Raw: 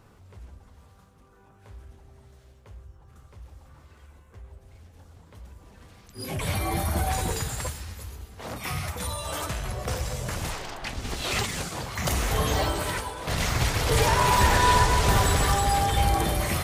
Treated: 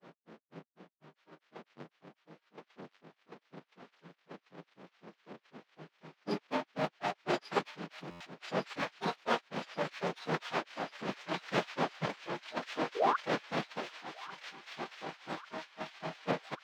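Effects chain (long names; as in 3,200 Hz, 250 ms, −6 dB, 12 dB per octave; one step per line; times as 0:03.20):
each half-wave held at its own peak
elliptic high-pass filter 200 Hz, stop band 40 dB
compressor whose output falls as the input rises −28 dBFS, ratio −0.5
granular cloud 143 ms, grains 4 per second
sound drawn into the spectrogram rise, 0:12.96–0:13.16, 420–1,500 Hz −25 dBFS
phase-vocoder pitch shift with formants kept −4 semitones
high-frequency loss of the air 210 metres
on a send: delay with a high-pass on its return 1,143 ms, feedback 61%, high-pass 2,200 Hz, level −5 dB
on the sum: buffer that repeats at 0:08.10, samples 512, times 8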